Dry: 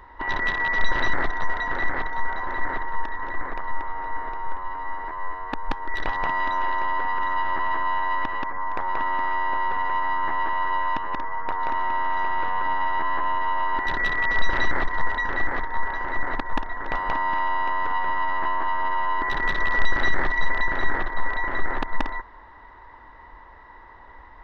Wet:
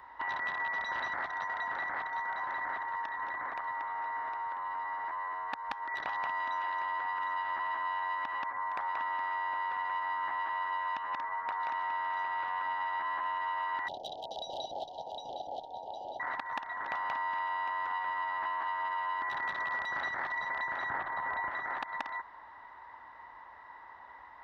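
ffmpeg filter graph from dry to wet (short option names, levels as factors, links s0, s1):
-filter_complex "[0:a]asettb=1/sr,asplit=3[s0][s1][s2];[s0]atrim=end=13.884[s3];[s1]atrim=start=13.88:end=16.2,asetpts=PTS-STARTPTS,afade=t=in:d=0.004:c=qsin,afade=t=out:st=2.316:d=0.004:c=qsin,asuperstop=centerf=1600:order=20:qfactor=0.73,equalizer=f=570:w=1.2:g=7.5[s4];[s2]atrim=start=16.196[s5];[s3][s4]acrossfade=d=0.004:c1=hsin:c2=qsin[s6];[s6][s5]acrossfade=d=0.004:c1=qsin:c2=hsin,asettb=1/sr,asplit=3[s7][s8][s9];[s7]atrim=end=20.904[s10];[s8]atrim=start=20.9:end=21.49,asetpts=PTS-STARTPTS,afade=t=in:d=0.004:c=qsin,afade=t=out:st=0.586:d=0.004:c=qsin,equalizer=f=84:t=o:w=2.2:g=6.5,acontrast=64,lowpass=f=1300:p=1[s11];[s9]atrim=start=21.486[s12];[s10][s11]acrossfade=d=0.004:c1=hsin:c2=qsin[s13];[s13][s12]acrossfade=d=0.004:c1=qsin:c2=hsin,highpass=100,lowshelf=f=560:t=q:w=1.5:g=-6.5,acrossover=split=660|1500[s14][s15][s16];[s14]acompressor=threshold=0.00501:ratio=4[s17];[s15]acompressor=threshold=0.0251:ratio=4[s18];[s16]acompressor=threshold=0.0158:ratio=4[s19];[s17][s18][s19]amix=inputs=3:normalize=0,volume=0.596"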